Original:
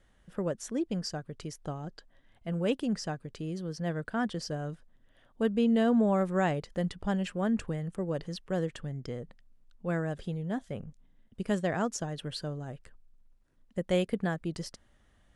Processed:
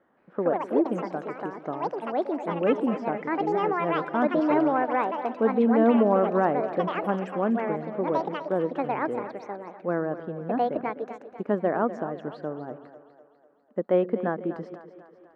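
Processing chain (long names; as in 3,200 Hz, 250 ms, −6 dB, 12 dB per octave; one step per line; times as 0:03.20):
Chebyshev band-pass filter 280–1,200 Hz, order 2
delay with pitch and tempo change per echo 171 ms, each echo +5 semitones, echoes 2
echo with a time of its own for lows and highs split 350 Hz, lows 131 ms, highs 248 ms, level −13 dB
level +7.5 dB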